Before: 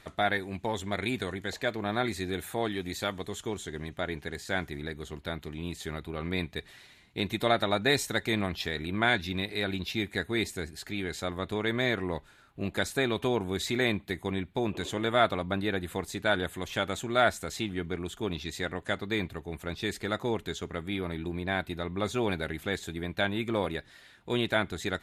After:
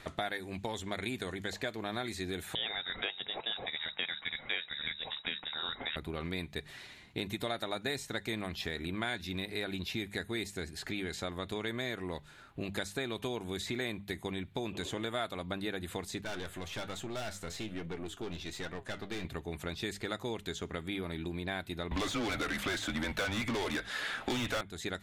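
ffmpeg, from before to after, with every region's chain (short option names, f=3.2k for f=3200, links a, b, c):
-filter_complex "[0:a]asettb=1/sr,asplit=3[a][b][c];[a]atrim=end=2.554[d];[b]atrim=start=2.55:end=5.96,asetpts=PTS-STARTPTS,afade=t=in:d=0.004:c=qsin,afade=t=out:st=3.406:d=0.004:c=qsin,highshelf=f=2k:g=8.5,lowpass=f=3.3k:t=q:w=0.5098,lowpass=f=3.3k:t=q:w=0.6013,lowpass=f=3.3k:t=q:w=0.9,lowpass=f=3.3k:t=q:w=2.563,afreqshift=-3900[e];[c]atrim=start=5.956[f];[d][e]acrossfade=d=0.004:c1=hsin:c2=qsin[g];[g][f]acrossfade=d=0.004:c1=qsin:c2=hsin,asettb=1/sr,asplit=3[h][i][j];[h]atrim=end=16.214[k];[i]atrim=start=16.21:end=19.25,asetpts=PTS-STARTPTS,afade=t=in:d=0.004:c=qsin,afade=t=out:st=3.036:d=0.004:c=qsin,highpass=48,aeval=exprs='(tanh(39.8*val(0)+0.35)-tanh(0.35))/39.8':c=same,flanger=delay=5.6:depth=6.9:regen=70:speed=1.2:shape=triangular[l];[j]atrim=start=19.246[m];[k][l]acrossfade=d=0.004:c1=hsin:c2=qsin[n];[n][m]acrossfade=d=0.004:c1=qsin:c2=hsin,asettb=1/sr,asplit=3[o][p][q];[o]atrim=end=21.914[r];[p]atrim=start=21.91:end=24.61,asetpts=PTS-STARTPTS,afade=t=in:d=0.004:c=qsin,afade=t=out:st=2.696:d=0.004:c=qsin,highpass=60,asplit=2[s][t];[t]highpass=f=720:p=1,volume=31dB,asoftclip=type=tanh:threshold=-11.5dB[u];[s][u]amix=inputs=2:normalize=0,lowpass=f=2.7k:p=1,volume=-6dB,afreqshift=-110[v];[q]atrim=start=24.606[w];[r][v]acrossfade=d=0.004:c1=hsin:c2=qsin[x];[x][w]acrossfade=d=0.004:c1=qsin:c2=hsin,highshelf=f=8.9k:g=-6.5,bandreject=f=50:t=h:w=6,bandreject=f=100:t=h:w=6,bandreject=f=150:t=h:w=6,bandreject=f=200:t=h:w=6,acrossover=split=2900|6600[y][z][aa];[y]acompressor=threshold=-41dB:ratio=4[ab];[z]acompressor=threshold=-50dB:ratio=4[ac];[aa]acompressor=threshold=-55dB:ratio=4[ad];[ab][ac][ad]amix=inputs=3:normalize=0,volume=4.5dB"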